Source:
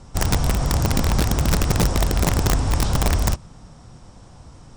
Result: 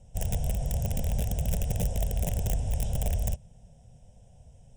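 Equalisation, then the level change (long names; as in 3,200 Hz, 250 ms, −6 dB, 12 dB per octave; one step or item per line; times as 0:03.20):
flat-topped bell 1,400 Hz −13.5 dB
phaser with its sweep stopped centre 1,200 Hz, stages 6
−7.5 dB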